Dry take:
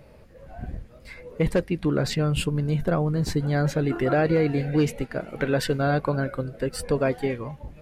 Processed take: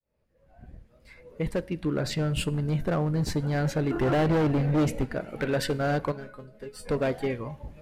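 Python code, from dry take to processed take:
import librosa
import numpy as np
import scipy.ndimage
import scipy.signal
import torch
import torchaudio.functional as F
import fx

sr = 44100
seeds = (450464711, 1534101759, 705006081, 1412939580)

y = fx.fade_in_head(x, sr, length_s=2.5)
y = fx.low_shelf(y, sr, hz=420.0, db=8.0, at=(3.94, 5.15))
y = np.clip(y, -10.0 ** (-19.0 / 20.0), 10.0 ** (-19.0 / 20.0))
y = fx.comb_fb(y, sr, f0_hz=210.0, decay_s=0.16, harmonics='all', damping=0.0, mix_pct=90, at=(6.11, 6.85), fade=0.02)
y = fx.rev_fdn(y, sr, rt60_s=0.69, lf_ratio=1.0, hf_ratio=0.8, size_ms=10.0, drr_db=17.5)
y = y * librosa.db_to_amplitude(-2.0)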